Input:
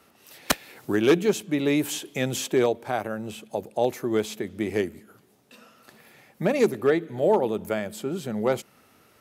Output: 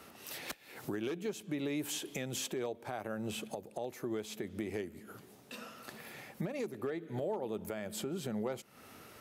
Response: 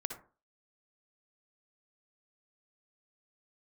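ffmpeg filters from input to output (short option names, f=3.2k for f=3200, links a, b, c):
-af "acompressor=threshold=-39dB:ratio=3,alimiter=level_in=7.5dB:limit=-24dB:level=0:latency=1:release=274,volume=-7.5dB,volume=4dB"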